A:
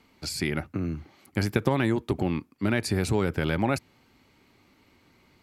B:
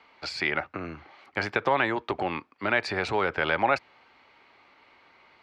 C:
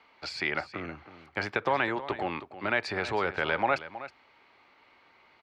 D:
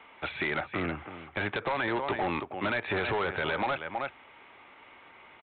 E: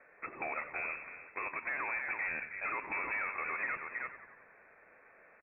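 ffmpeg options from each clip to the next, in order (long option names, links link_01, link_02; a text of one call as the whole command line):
ffmpeg -i in.wav -filter_complex "[0:a]aemphasis=mode=reproduction:type=75kf,asplit=2[link_01][link_02];[link_02]alimiter=limit=-17.5dB:level=0:latency=1:release=86,volume=-3dB[link_03];[link_01][link_03]amix=inputs=2:normalize=0,acrossover=split=550 5400:gain=0.0794 1 0.0631[link_04][link_05][link_06];[link_04][link_05][link_06]amix=inputs=3:normalize=0,volume=5.5dB" out.wav
ffmpeg -i in.wav -af "aecho=1:1:319:0.2,volume=-3dB" out.wav
ffmpeg -i in.wav -af "acompressor=threshold=-29dB:ratio=6,aresample=8000,volume=32.5dB,asoftclip=hard,volume=-32.5dB,aresample=44100,volume=7.5dB" out.wav
ffmpeg -i in.wav -filter_complex "[0:a]lowpass=frequency=2300:width_type=q:width=0.5098,lowpass=frequency=2300:width_type=q:width=0.6013,lowpass=frequency=2300:width_type=q:width=0.9,lowpass=frequency=2300:width_type=q:width=2.563,afreqshift=-2700,asplit=2[link_01][link_02];[link_02]asplit=7[link_03][link_04][link_05][link_06][link_07][link_08][link_09];[link_03]adelay=92,afreqshift=-64,volume=-12.5dB[link_10];[link_04]adelay=184,afreqshift=-128,volume=-16.7dB[link_11];[link_05]adelay=276,afreqshift=-192,volume=-20.8dB[link_12];[link_06]adelay=368,afreqshift=-256,volume=-25dB[link_13];[link_07]adelay=460,afreqshift=-320,volume=-29.1dB[link_14];[link_08]adelay=552,afreqshift=-384,volume=-33.3dB[link_15];[link_09]adelay=644,afreqshift=-448,volume=-37.4dB[link_16];[link_10][link_11][link_12][link_13][link_14][link_15][link_16]amix=inputs=7:normalize=0[link_17];[link_01][link_17]amix=inputs=2:normalize=0,volume=-7dB" out.wav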